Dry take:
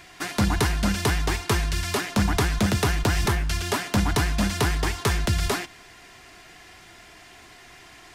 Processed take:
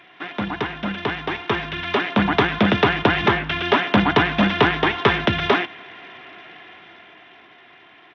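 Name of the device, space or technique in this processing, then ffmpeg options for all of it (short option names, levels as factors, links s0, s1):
Bluetooth headset: -af "highpass=200,dynaudnorm=f=210:g=17:m=5.62,aresample=8000,aresample=44100" -ar 32000 -c:a sbc -b:a 64k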